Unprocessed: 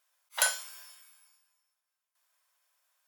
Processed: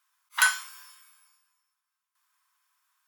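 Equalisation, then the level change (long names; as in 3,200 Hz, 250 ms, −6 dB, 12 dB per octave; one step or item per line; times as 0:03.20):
low shelf with overshoot 770 Hz −11.5 dB, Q 3
dynamic equaliser 1,900 Hz, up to +6 dB, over −39 dBFS, Q 0.84
0.0 dB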